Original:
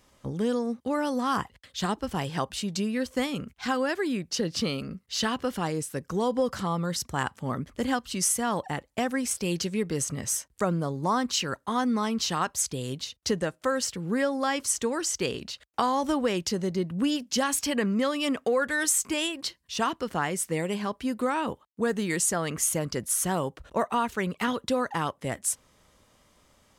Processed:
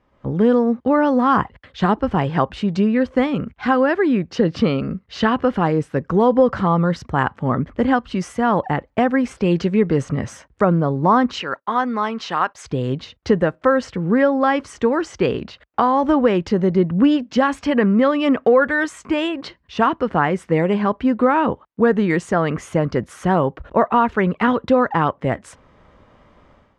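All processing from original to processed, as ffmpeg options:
-filter_complex "[0:a]asettb=1/sr,asplit=3[a][b][c];[a]atrim=end=11.424[d];[b]atrim=start=11.42:end=12.65,asetpts=PTS-STARTPTS,afade=t=in:d=0.004:c=qsin,afade=t=out:st=1.226:d=0.004:c=qsin,agate=range=-22dB:threshold=-48dB:ratio=16:release=100:detection=peak,highpass=f=780:p=1[e];[c]atrim=start=12.646[f];[d][e]acrossfade=d=0.004:c1=hsin:c2=qsin[g];[g][f]acrossfade=d=0.004:c1=qsin:c2=hsin,dynaudnorm=f=100:g=5:m=12.5dB,lowpass=1.8k"

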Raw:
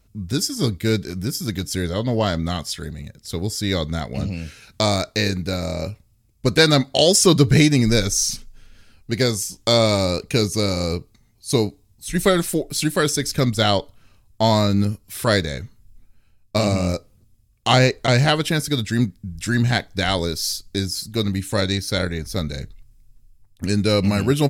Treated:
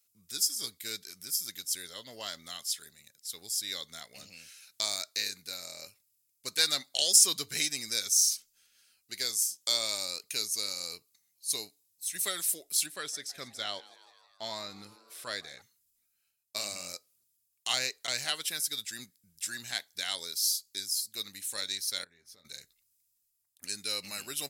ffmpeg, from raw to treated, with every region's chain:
-filter_complex "[0:a]asettb=1/sr,asplit=3[a][b][c];[a]atrim=end=12.864[d];[b]atrim=start=12.86:end=15.62,asetpts=PTS-STARTPTS,afade=t=in:d=0.004:c=qsin,afade=t=out:st=2.756:d=0.004:c=qsin,aemphasis=mode=reproduction:type=75fm,asplit=6[e][f][g][h][i][j];[f]adelay=160,afreqshift=120,volume=-20.5dB[k];[g]adelay=320,afreqshift=240,volume=-24.7dB[l];[h]adelay=480,afreqshift=360,volume=-28.8dB[m];[i]adelay=640,afreqshift=480,volume=-33dB[n];[j]adelay=800,afreqshift=600,volume=-37.1dB[o];[e][k][l][m][n][o]amix=inputs=6:normalize=0,atrim=end_sample=121716[p];[c]atrim=start=15.616[q];[d][p]acrossfade=d=0.004:c1=hsin:c2=qsin[r];[r][q]acrossfade=d=0.004:c1=qsin:c2=hsin,asettb=1/sr,asplit=3[s][t][u];[s]atrim=end=22.044[v];[t]atrim=start=22.04:end=22.45,asetpts=PTS-STARTPTS,afade=t=in:d=0.004:c=qsin,afade=t=out:st=0.406:d=0.004:c=qsin,lowpass=f=1.3k:p=1,asplit=2[w][x];[x]adelay=23,volume=-8dB[y];[w][y]amix=inputs=2:normalize=0,atrim=end_sample=18081,acompressor=threshold=-32dB:ratio=8:attack=3.2:release=140:knee=1:detection=peak[z];[u]atrim=start=22.446[aa];[v][z]acrossfade=d=0.004:c1=hsin:c2=qsin[ab];[ab][aa]acrossfade=d=0.004:c1=qsin:c2=hsin,aderivative,bandreject=f=900:w=28,volume=-2.5dB"

